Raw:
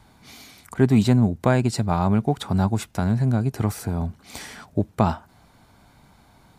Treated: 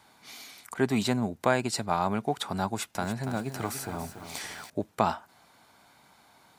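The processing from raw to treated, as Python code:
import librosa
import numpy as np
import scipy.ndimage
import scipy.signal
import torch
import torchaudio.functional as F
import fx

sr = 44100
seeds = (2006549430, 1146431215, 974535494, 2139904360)

y = fx.highpass(x, sr, hz=670.0, slope=6)
y = fx.echo_crushed(y, sr, ms=285, feedback_pct=55, bits=8, wet_db=-9.0, at=(2.67, 4.7))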